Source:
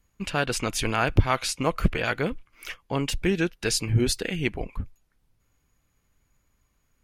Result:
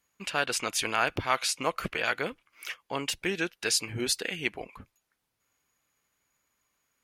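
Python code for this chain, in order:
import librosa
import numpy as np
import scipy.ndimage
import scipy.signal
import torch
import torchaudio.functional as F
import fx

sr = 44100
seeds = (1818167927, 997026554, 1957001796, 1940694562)

y = fx.highpass(x, sr, hz=720.0, slope=6)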